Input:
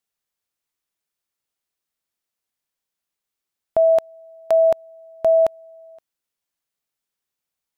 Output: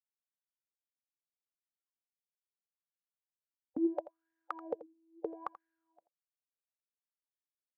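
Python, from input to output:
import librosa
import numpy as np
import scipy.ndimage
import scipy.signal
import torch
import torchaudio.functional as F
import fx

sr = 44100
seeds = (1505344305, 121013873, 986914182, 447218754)

p1 = fx.octave_divider(x, sr, octaves=1, level_db=-4.0)
p2 = fx.spec_gate(p1, sr, threshold_db=-15, keep='weak')
p3 = fx.wah_lfo(p2, sr, hz=0.75, low_hz=240.0, high_hz=1700.0, q=9.7)
p4 = p3 + fx.echo_single(p3, sr, ms=84, db=-15.5, dry=0)
y = p4 * librosa.db_to_amplitude(8.5)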